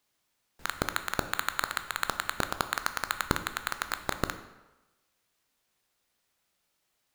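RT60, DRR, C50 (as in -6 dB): 1.1 s, 9.0 dB, 11.5 dB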